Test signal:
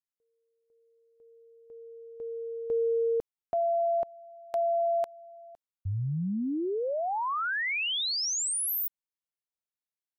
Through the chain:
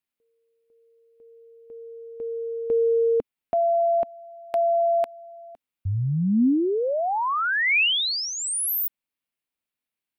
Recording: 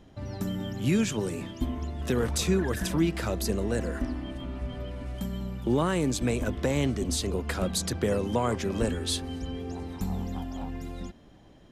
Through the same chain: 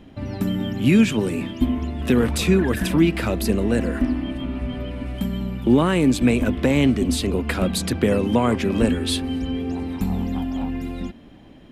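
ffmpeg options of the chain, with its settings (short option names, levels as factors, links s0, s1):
-af "equalizer=f=250:t=o:w=0.67:g=7,equalizer=f=2500:t=o:w=0.67:g=6,equalizer=f=6300:t=o:w=0.67:g=-7,volume=1.88"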